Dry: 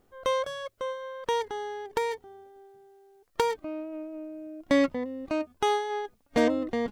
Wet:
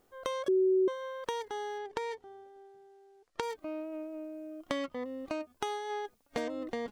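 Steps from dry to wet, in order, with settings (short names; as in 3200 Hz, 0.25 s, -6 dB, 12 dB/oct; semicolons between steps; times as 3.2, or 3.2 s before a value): tone controls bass -7 dB, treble +3 dB; compressor 6:1, threshold -31 dBFS, peak gain reduction 11.5 dB; 0.48–0.88 bleep 376 Hz -21.5 dBFS; 1.78–3.43 air absorption 62 m; 4.51–5.28 small resonant body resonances 1200/3100 Hz, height 14 dB; gain -1 dB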